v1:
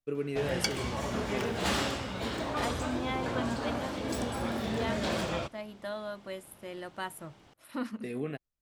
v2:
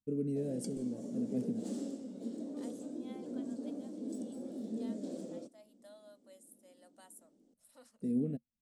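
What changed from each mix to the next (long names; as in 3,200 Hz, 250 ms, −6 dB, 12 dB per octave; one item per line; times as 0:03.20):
second voice: add high-pass filter 770 Hz 24 dB per octave
background: add four-pole ladder high-pass 260 Hz, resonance 45%
master: add drawn EQ curve 140 Hz 0 dB, 230 Hz +11 dB, 360 Hz −7 dB, 520 Hz −3 dB, 1,000 Hz −26 dB, 2,500 Hz −26 dB, 8,400 Hz −2 dB, 13,000 Hz −14 dB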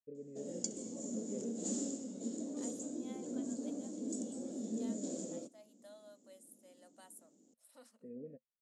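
first voice: add formant resonators in series e
background: add low-pass with resonance 7,000 Hz, resonance Q 12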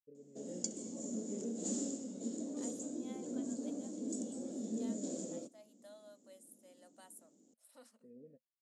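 first voice −8.5 dB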